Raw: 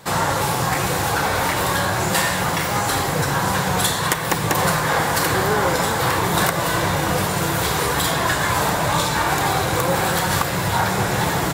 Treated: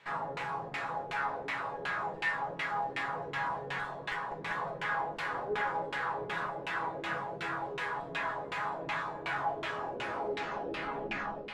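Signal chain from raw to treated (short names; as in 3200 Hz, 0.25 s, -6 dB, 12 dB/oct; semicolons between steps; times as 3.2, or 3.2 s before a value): tape stop at the end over 2.26 s; tilt +3 dB/oct; resonator bank C#3 minor, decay 0.23 s; split-band echo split 430 Hz, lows 93 ms, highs 0.679 s, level -6.5 dB; tube stage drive 29 dB, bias 0.45; LFO low-pass saw down 2.7 Hz 380–2700 Hz; gain -1 dB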